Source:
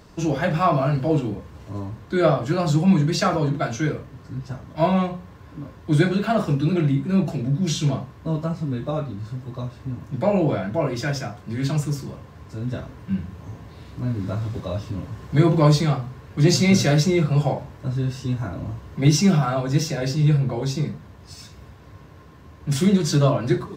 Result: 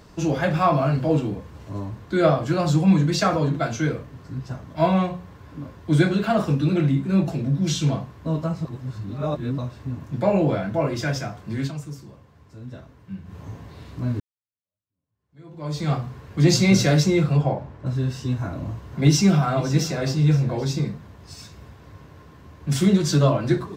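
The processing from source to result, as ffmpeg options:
-filter_complex "[0:a]asplit=3[a][b][c];[a]afade=t=out:st=17.36:d=0.02[d];[b]lowpass=f=1.8k:p=1,afade=t=in:st=17.36:d=0.02,afade=t=out:st=17.85:d=0.02[e];[c]afade=t=in:st=17.85:d=0.02[f];[d][e][f]amix=inputs=3:normalize=0,asettb=1/sr,asplit=3[g][h][i];[g]atrim=end=18.384[j];[h]atrim=start=18.38:end=20.8,asetpts=PTS-STARTPTS,afade=t=in:d=0.004:c=qsin,afade=t=out:st=2.416:d=0.004:c=qsin,aecho=1:1:519:0.158,atrim=end_sample=106722[k];[i]atrim=start=20.796[l];[j][k]acrossfade=d=0.004:c1=hsin:c2=qsin[m];[m][l]acrossfade=d=0.004:c1=qsin:c2=hsin,asplit=6[n][o][p][q][r][s];[n]atrim=end=8.652[t];[o]atrim=start=8.648:end=9.582,asetpts=PTS-STARTPTS,areverse[u];[p]atrim=start=9.578:end=11.72,asetpts=PTS-STARTPTS,afade=t=out:st=2.022:d=0.12:silence=0.316228[v];[q]atrim=start=11.72:end=13.24,asetpts=PTS-STARTPTS,volume=-10dB[w];[r]atrim=start=13.24:end=14.2,asetpts=PTS-STARTPTS,afade=t=in:d=0.12:silence=0.316228,afade=t=out:st=0.956:d=0.004:c=hsin[x];[s]atrim=start=14.2,asetpts=PTS-STARTPTS,afade=t=in:d=1.73:c=exp[y];[t][u]acrossfade=d=0.004:c1=hsin:c2=hsin[z];[v][w][x][y]concat=n=4:v=0:a=1[aa];[z][aa]acrossfade=d=0.004:c1=hsin:c2=hsin"

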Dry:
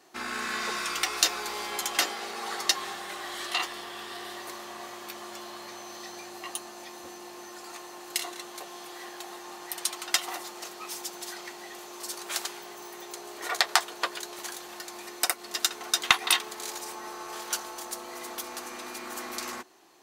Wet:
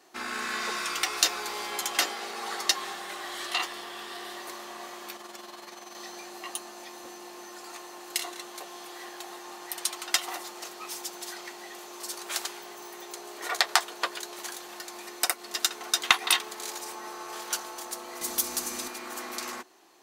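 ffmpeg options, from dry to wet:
-filter_complex "[0:a]asettb=1/sr,asplit=3[a][b][c];[a]atrim=end=5.164[d];[b]atrim=start=5.16:end=5.95,asetpts=PTS-STARTPTS,afade=t=in:d=0.004:c=qsin,afade=t=out:st=0.786:d=0.004:c=qsin,tremolo=f=21:d=0.571[e];[c]atrim=start=5.946[f];[d][e]acrossfade=d=0.004:c1=hsin:c2=qsin[g];[g][f]acrossfade=d=0.004:c1=qsin:c2=hsin,asettb=1/sr,asplit=3[h][i][j];[h]atrim=end=18.214[k];[i]atrim=start=18.21:end=18.88,asetpts=PTS-STARTPTS,afade=t=in:d=0.004:c=qsin,afade=t=out:st=0.666:d=0.004:c=qsin,bass=f=250:g=14,treble=f=4k:g=12[l];[j]atrim=start=18.876[m];[k][l]acrossfade=d=0.004:c1=hsin:c2=qsin[n];[n][m]acrossfade=d=0.004:c1=qsin:c2=hsin,equalizer=f=96:t=o:w=0.93:g=-12.5"

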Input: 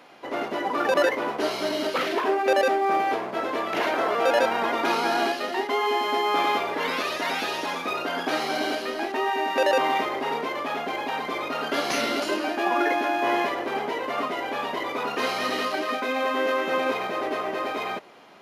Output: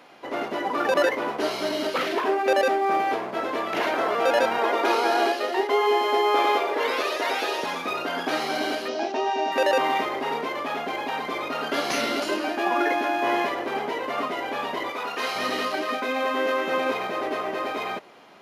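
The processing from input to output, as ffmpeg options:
-filter_complex "[0:a]asettb=1/sr,asplit=3[a][b][c];[a]atrim=end=4.584[d];[b]atrim=start=4.58:end=7.64,asetpts=PTS-STARTPTS,afade=t=in:d=0.004:c=qsin,afade=t=out:st=3.056:d=0.004:c=qsin,highpass=f=410:t=q:w=1.8[e];[c]atrim=start=7.636[f];[d][e]acrossfade=d=0.004:c1=hsin:c2=qsin[g];[g][f]acrossfade=d=0.004:c1=qsin:c2=hsin,asettb=1/sr,asplit=3[h][i][j];[h]atrim=end=8.884[k];[i]atrim=start=8.88:end=9.52,asetpts=PTS-STARTPTS,afade=t=in:d=0.004:c=qsin,afade=t=out:st=0.636:d=0.004:c=qsin,highpass=110,equalizer=f=650:t=q:w=4:g=6,equalizer=f=1.2k:t=q:w=4:g=-5,equalizer=f=1.9k:t=q:w=4:g=-8,equalizer=f=5.7k:t=q:w=4:g=7,lowpass=f=6.6k:w=0.5412,lowpass=f=6.6k:w=1.3066[l];[j]atrim=start=9.516[m];[k][l]acrossfade=d=0.004:c1=hsin:c2=qsin[n];[n][m]acrossfade=d=0.004:c1=qsin:c2=hsin,asettb=1/sr,asplit=3[o][p][q];[o]atrim=end=14.904[r];[p]atrim=start=14.9:end=15.36,asetpts=PTS-STARTPTS,afade=t=in:d=0.004:c=qsin,afade=t=out:st=0.456:d=0.004:c=qsin,lowshelf=f=400:g=-10.5[s];[q]atrim=start=15.356[t];[r][s]acrossfade=d=0.004:c1=hsin:c2=qsin[u];[u][t]acrossfade=d=0.004:c1=qsin:c2=hsin"

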